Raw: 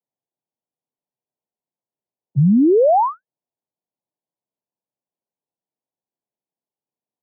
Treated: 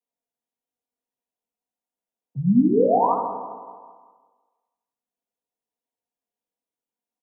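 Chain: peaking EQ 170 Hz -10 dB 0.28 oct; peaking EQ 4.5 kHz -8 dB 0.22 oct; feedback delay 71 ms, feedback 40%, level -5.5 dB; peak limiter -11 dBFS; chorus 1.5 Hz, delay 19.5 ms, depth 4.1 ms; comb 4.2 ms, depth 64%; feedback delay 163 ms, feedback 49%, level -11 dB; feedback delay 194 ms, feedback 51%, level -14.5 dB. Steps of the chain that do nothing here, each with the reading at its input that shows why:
peaking EQ 4.5 kHz: input has nothing above 1.3 kHz

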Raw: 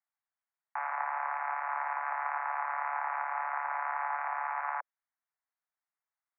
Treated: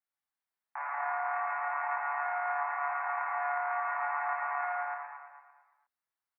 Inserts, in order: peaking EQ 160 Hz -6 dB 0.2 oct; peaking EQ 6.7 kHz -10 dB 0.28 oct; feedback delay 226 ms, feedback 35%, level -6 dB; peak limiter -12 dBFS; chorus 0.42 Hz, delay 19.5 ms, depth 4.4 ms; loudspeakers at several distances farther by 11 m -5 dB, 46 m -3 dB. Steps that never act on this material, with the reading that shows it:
peaking EQ 160 Hz: input has nothing below 570 Hz; peaking EQ 6.7 kHz: input has nothing above 2.6 kHz; peak limiter -12 dBFS: peak at its input -20.5 dBFS

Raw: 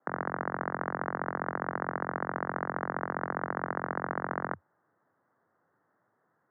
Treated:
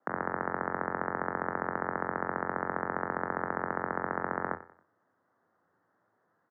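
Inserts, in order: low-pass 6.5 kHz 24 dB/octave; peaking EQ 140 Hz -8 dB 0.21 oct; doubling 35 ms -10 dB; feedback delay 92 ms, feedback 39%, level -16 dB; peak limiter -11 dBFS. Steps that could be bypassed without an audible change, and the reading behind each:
low-pass 6.5 kHz: input has nothing above 2.2 kHz; peak limiter -11 dBFS: peak at its input -14.0 dBFS

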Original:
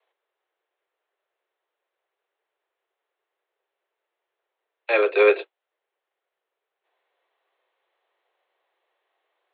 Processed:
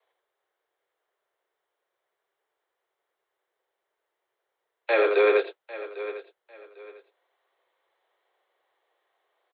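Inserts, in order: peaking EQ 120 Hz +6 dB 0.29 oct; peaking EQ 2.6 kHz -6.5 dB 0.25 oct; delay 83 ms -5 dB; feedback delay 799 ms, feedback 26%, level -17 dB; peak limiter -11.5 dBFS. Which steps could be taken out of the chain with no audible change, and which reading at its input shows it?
peaking EQ 120 Hz: input has nothing below 300 Hz

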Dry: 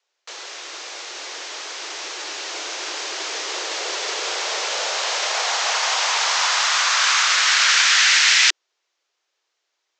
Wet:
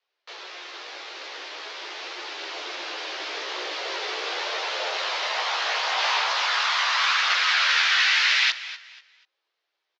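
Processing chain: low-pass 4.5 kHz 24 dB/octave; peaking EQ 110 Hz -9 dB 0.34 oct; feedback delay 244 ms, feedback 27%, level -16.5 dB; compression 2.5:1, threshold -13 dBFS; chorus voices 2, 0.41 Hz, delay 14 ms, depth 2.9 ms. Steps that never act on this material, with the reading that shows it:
peaking EQ 110 Hz: input has nothing below 270 Hz

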